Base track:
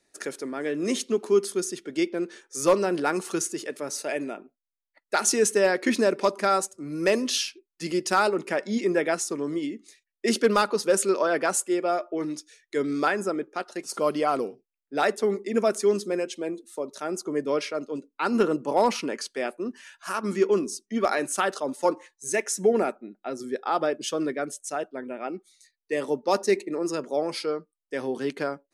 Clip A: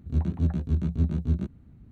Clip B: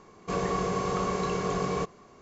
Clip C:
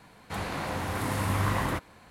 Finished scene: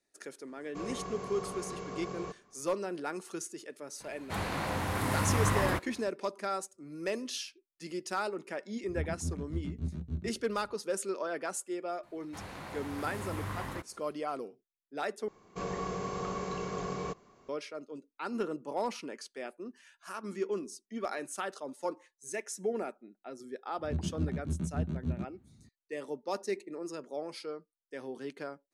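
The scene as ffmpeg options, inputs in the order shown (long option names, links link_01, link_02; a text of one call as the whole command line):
ffmpeg -i bed.wav -i cue0.wav -i cue1.wav -i cue2.wav -filter_complex "[2:a]asplit=2[link_01][link_02];[3:a]asplit=2[link_03][link_04];[1:a]asplit=2[link_05][link_06];[0:a]volume=-12dB[link_07];[link_06]highpass=91[link_08];[link_07]asplit=2[link_09][link_10];[link_09]atrim=end=15.284[link_11];[link_02]atrim=end=2.21,asetpts=PTS-STARTPTS,volume=-7.5dB[link_12];[link_10]atrim=start=17.486[link_13];[link_01]atrim=end=2.21,asetpts=PTS-STARTPTS,volume=-12dB,afade=type=in:duration=0.004:curve=hsin,afade=type=out:start_time=2.206:duration=0.004:curve=hsin,adelay=470[link_14];[link_03]atrim=end=2.1,asetpts=PTS-STARTPTS,volume=-1dB,afade=type=in:duration=0.004:curve=hsin,afade=type=out:start_time=2.096:duration=0.004:curve=hsin,adelay=4000[link_15];[link_05]atrim=end=1.91,asetpts=PTS-STARTPTS,volume=-11.5dB,afade=type=in:duration=0.004:curve=hsin,afade=type=out:start_time=1.906:duration=0.004:curve=hsin,adelay=8830[link_16];[link_04]atrim=end=2.1,asetpts=PTS-STARTPTS,volume=-11dB,afade=type=in:duration=0.004:curve=hsin,afade=type=out:start_time=2.096:duration=0.004:curve=hsin,adelay=12030[link_17];[link_08]atrim=end=1.91,asetpts=PTS-STARTPTS,volume=-6dB,afade=type=in:duration=0.004:curve=hsin,afade=type=out:start_time=1.906:duration=0.004:curve=hsin,adelay=23780[link_18];[link_11][link_12]acrossfade=duration=0.004:curve1=hsin:curve2=hsin[link_19];[link_19][link_13]acrossfade=duration=0.004:curve1=hsin:curve2=hsin[link_20];[link_20][link_14][link_15][link_16][link_17][link_18]amix=inputs=6:normalize=0" out.wav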